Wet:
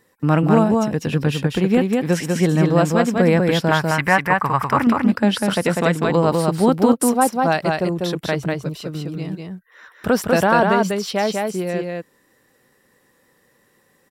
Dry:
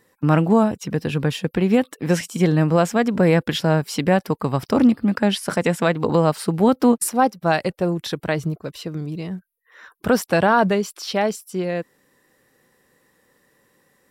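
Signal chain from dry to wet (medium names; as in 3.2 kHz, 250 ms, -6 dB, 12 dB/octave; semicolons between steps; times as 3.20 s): 3.71–4.87 s: graphic EQ 250/500/1000/2000/4000 Hz -7/-7/+10/+11/-8 dB; on a send: delay 197 ms -3 dB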